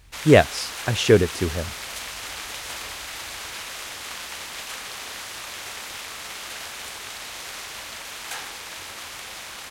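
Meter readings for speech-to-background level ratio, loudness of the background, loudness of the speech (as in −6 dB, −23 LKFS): 13.5 dB, −33.0 LKFS, −19.5 LKFS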